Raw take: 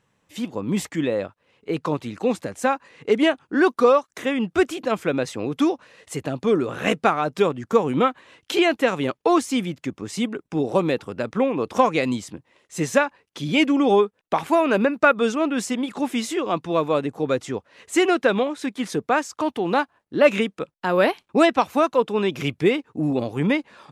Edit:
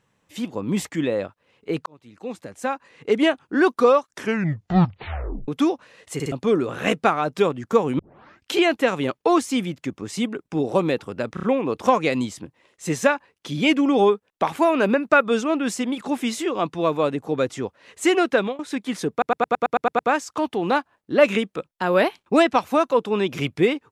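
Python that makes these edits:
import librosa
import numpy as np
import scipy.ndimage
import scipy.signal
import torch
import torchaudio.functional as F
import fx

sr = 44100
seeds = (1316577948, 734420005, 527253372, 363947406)

y = fx.edit(x, sr, fx.fade_in_span(start_s=1.86, length_s=1.38),
    fx.tape_stop(start_s=4.06, length_s=1.42),
    fx.stutter_over(start_s=6.14, slice_s=0.06, count=3),
    fx.tape_start(start_s=7.99, length_s=0.52),
    fx.stutter(start_s=11.34, slice_s=0.03, count=4),
    fx.fade_out_to(start_s=18.21, length_s=0.29, curve='qsin', floor_db=-23.0),
    fx.stutter(start_s=19.02, slice_s=0.11, count=9), tone=tone)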